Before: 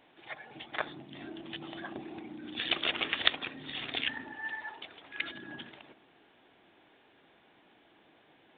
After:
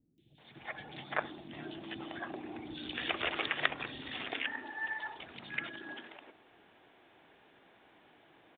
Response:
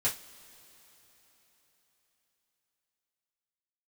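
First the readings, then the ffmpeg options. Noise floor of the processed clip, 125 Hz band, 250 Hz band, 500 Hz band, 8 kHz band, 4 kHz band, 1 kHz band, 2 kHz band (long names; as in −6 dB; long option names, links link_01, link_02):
−64 dBFS, +0.5 dB, −1.0 dB, +0.5 dB, can't be measured, −7.0 dB, +1.5 dB, −0.5 dB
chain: -filter_complex "[0:a]acrossover=split=250|3700[link_01][link_02][link_03];[link_03]adelay=180[link_04];[link_02]adelay=380[link_05];[link_01][link_05][link_04]amix=inputs=3:normalize=0,acrossover=split=2900[link_06][link_07];[link_07]acompressor=threshold=-52dB:ratio=4:attack=1:release=60[link_08];[link_06][link_08]amix=inputs=2:normalize=0,volume=1.5dB"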